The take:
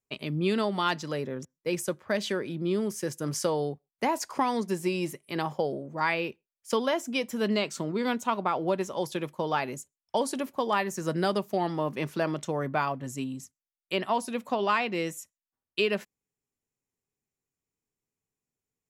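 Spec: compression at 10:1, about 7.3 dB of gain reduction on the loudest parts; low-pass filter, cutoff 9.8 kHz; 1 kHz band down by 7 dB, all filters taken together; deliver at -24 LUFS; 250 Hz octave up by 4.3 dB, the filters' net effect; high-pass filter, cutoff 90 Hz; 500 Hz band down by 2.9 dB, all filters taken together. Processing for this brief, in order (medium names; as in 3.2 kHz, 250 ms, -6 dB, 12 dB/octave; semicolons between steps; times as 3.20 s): high-pass 90 Hz; low-pass 9.8 kHz; peaking EQ 250 Hz +7.5 dB; peaking EQ 500 Hz -4.5 dB; peaking EQ 1 kHz -8 dB; compression 10:1, threshold -27 dBFS; trim +9.5 dB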